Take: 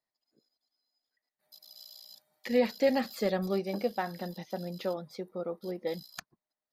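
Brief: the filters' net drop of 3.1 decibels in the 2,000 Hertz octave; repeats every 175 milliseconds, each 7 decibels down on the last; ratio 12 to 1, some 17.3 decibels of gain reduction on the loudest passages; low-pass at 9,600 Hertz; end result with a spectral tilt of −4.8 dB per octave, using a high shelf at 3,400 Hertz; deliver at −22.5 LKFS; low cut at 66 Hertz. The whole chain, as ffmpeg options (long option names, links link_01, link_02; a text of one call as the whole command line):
ffmpeg -i in.wav -af "highpass=66,lowpass=9600,equalizer=frequency=2000:width_type=o:gain=-4.5,highshelf=frequency=3400:gain=3.5,acompressor=threshold=-38dB:ratio=12,aecho=1:1:175|350|525|700|875:0.447|0.201|0.0905|0.0407|0.0183,volume=21dB" out.wav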